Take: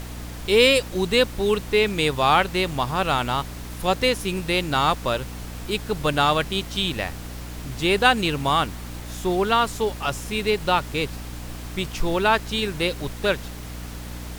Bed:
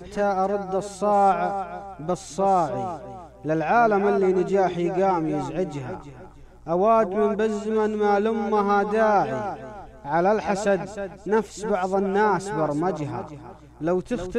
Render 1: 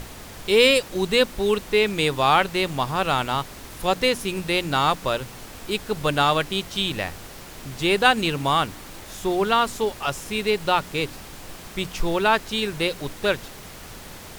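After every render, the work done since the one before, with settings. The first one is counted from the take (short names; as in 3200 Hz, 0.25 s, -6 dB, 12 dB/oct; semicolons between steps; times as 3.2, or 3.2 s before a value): de-hum 60 Hz, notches 5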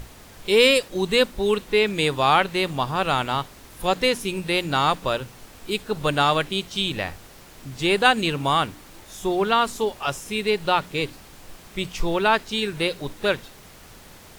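noise print and reduce 6 dB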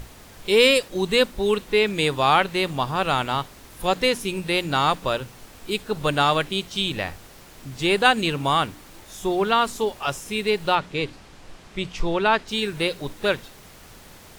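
10.75–12.48 air absorption 60 m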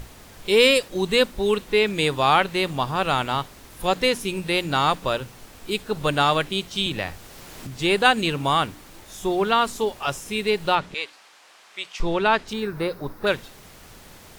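6.86–7.67 three-band squash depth 40%; 10.94–12 HPF 850 Hz; 12.53–13.27 EQ curve 640 Hz 0 dB, 1300 Hz +4 dB, 3100 Hz -14 dB, 5000 Hz -5 dB, 7600 Hz -14 dB, 16000 Hz +3 dB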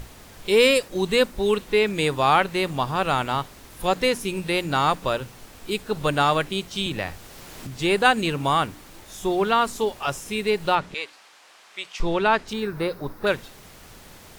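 dynamic EQ 3400 Hz, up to -4 dB, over -33 dBFS, Q 1.7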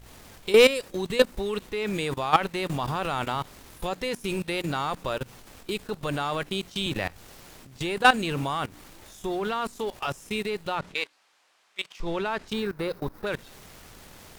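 level quantiser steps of 16 dB; sample leveller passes 1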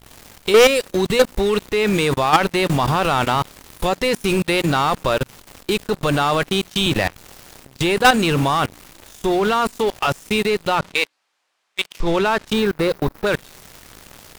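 sample leveller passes 3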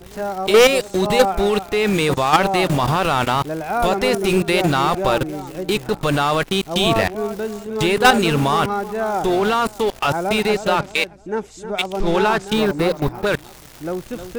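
add bed -2.5 dB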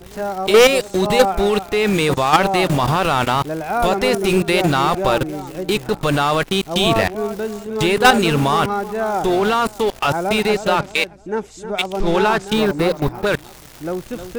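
gain +1 dB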